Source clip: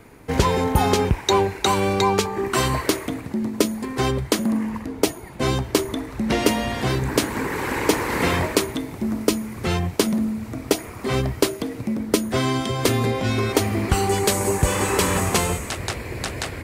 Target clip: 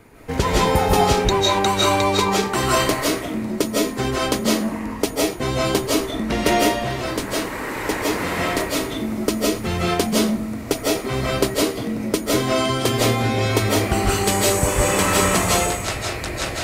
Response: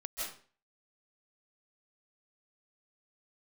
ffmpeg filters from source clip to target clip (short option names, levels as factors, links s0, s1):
-filter_complex "[0:a]asettb=1/sr,asplit=3[s0][s1][s2];[s0]atrim=end=6.534[s3];[s1]atrim=start=6.53:end=8.6,asetpts=PTS-STARTPTS,afade=t=in:d=0.004:c=qsin,afade=t=out:st=2.066:d=0.004:c=qsin,flanger=delay=3.3:depth=7.2:regen=-61:speed=1:shape=sinusoidal[s4];[s2]atrim=start=8.596[s5];[s3][s4]acrossfade=d=0.004:c1=hsin:c2=qsin[s6];[s6][s5]acrossfade=d=0.004:c1=qsin:c2=hsin[s7];[1:a]atrim=start_sample=2205,afade=t=out:st=0.34:d=0.01,atrim=end_sample=15435[s8];[s7][s8]afir=irnorm=-1:irlink=0,volume=1.33"